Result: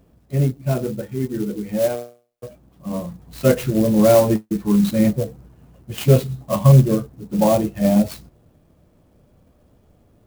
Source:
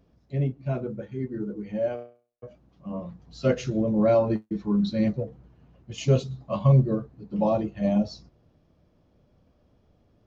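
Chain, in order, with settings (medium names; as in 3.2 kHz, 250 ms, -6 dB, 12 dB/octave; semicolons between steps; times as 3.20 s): sampling jitter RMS 0.044 ms; trim +7.5 dB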